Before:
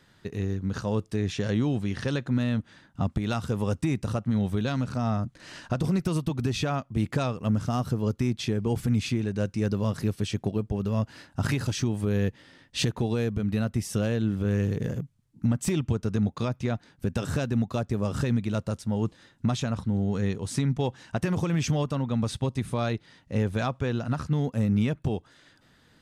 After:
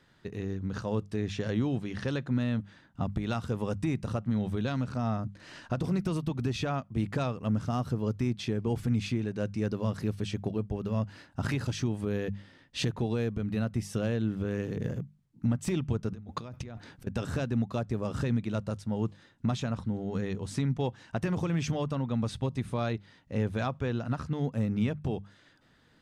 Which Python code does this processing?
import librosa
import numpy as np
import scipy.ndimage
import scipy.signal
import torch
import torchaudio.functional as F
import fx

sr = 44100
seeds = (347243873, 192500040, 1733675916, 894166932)

y = fx.over_compress(x, sr, threshold_db=-38.0, ratio=-1.0, at=(16.12, 17.07))
y = fx.high_shelf(y, sr, hz=6300.0, db=-8.0)
y = fx.hum_notches(y, sr, base_hz=50, count=4)
y = y * librosa.db_to_amplitude(-3.0)